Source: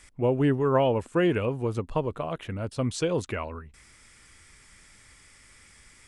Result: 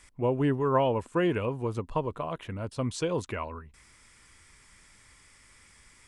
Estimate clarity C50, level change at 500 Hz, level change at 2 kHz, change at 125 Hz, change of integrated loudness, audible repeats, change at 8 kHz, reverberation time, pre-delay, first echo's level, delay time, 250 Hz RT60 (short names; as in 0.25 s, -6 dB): none, -3.0 dB, -3.0 dB, -3.0 dB, -2.5 dB, none, -3.0 dB, none, none, none, none, none